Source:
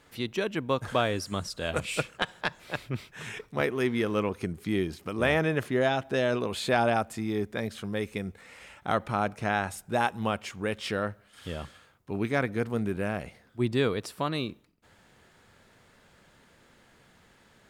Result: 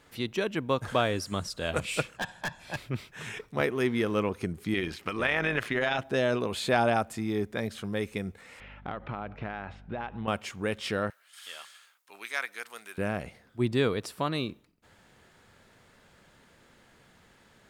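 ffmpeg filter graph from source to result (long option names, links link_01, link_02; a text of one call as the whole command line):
ffmpeg -i in.wav -filter_complex "[0:a]asettb=1/sr,asplit=3[link_01][link_02][link_03];[link_01]atrim=end=2.164[link_04];[link_02]atrim=start=2.16:end=2.77,asetpts=PTS-STARTPTS,afade=type=in:duration=0.004:curve=qsin,afade=type=out:start_time=0.606:duration=0.004:curve=qsin,lowpass=11000,aecho=1:1:1.2:0.57,atrim=end_sample=26901,asoftclip=type=hard:threshold=-28dB[link_05];[link_03]atrim=start=2.766[link_06];[link_04][link_05]acrossfade=duration=0.004:curve1=hsin:curve2=qsin[link_07];[link_07][link_06]acrossfade=duration=0.004:curve1=qsin:curve2=hsin,asettb=1/sr,asplit=3[link_08][link_09][link_10];[link_08]atrim=end=4.744[link_11];[link_09]atrim=start=4.74:end=5.99,asetpts=PTS-STARTPTS,afade=type=in:duration=0.004:curve=qsin,afade=type=out:start_time=1.246:duration=0.004:curve=qsin,equalizer=frequency=2200:width=0.51:gain=12,acompressor=threshold=-22dB:ratio=3:attack=3.2:release=140:knee=1:detection=peak,tremolo=f=110:d=0.519[link_12];[link_10]atrim=start=5.986[link_13];[link_11][link_12]acrossfade=duration=0.004:curve1=hsin:curve2=qsin[link_14];[link_14][link_13]acrossfade=duration=0.004:curve1=qsin:curve2=hsin,asettb=1/sr,asplit=3[link_15][link_16][link_17];[link_15]atrim=end=8.604[link_18];[link_16]atrim=start=8.6:end=10.28,asetpts=PTS-STARTPTS,afade=type=in:duration=0.004:curve=qsin,afade=type=out:start_time=1.676:duration=0.004:curve=qsin,lowpass=frequency=3300:width=0.5412,lowpass=frequency=3300:width=1.3066,acompressor=threshold=-31dB:ratio=10:attack=3.2:release=140:knee=1:detection=peak,aeval=exprs='val(0)+0.00316*(sin(2*PI*50*n/s)+sin(2*PI*2*50*n/s)/2+sin(2*PI*3*50*n/s)/3+sin(2*PI*4*50*n/s)/4+sin(2*PI*5*50*n/s)/5)':channel_layout=same[link_19];[link_17]atrim=start=10.276[link_20];[link_18][link_19]acrossfade=duration=0.004:curve1=hsin:curve2=qsin[link_21];[link_21][link_20]acrossfade=duration=0.004:curve1=qsin:curve2=hsin,asettb=1/sr,asplit=3[link_22][link_23][link_24];[link_22]atrim=end=11.104[link_25];[link_23]atrim=start=11.1:end=12.98,asetpts=PTS-STARTPTS,afade=type=in:duration=0.004:curve=qsin,afade=type=out:start_time=1.876:duration=0.004:curve=qsin,highpass=1300,highshelf=frequency=4300:gain=7.5[link_26];[link_24]atrim=start=12.976[link_27];[link_25][link_26]acrossfade=duration=0.004:curve1=hsin:curve2=qsin[link_28];[link_28][link_27]acrossfade=duration=0.004:curve1=qsin:curve2=hsin" out.wav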